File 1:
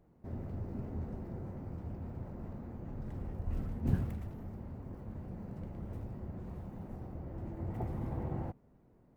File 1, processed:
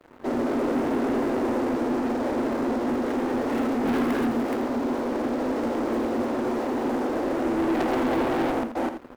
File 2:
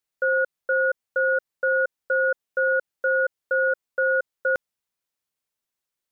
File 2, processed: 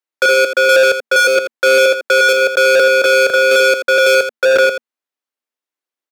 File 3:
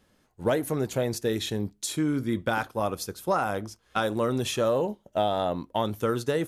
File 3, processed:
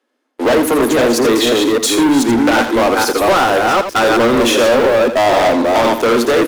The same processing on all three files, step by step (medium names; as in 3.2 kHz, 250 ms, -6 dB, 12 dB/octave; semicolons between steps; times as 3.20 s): chunks repeated in reverse 254 ms, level -4 dB; Chebyshev high-pass 230 Hz, order 10; treble shelf 4.2 kHz -8.5 dB; in parallel at +2 dB: compression 4:1, threshold -38 dBFS; on the sum: waveshaping leveller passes 5; on a send: delay 83 ms -9.5 dB; on the sum: trim +2 dB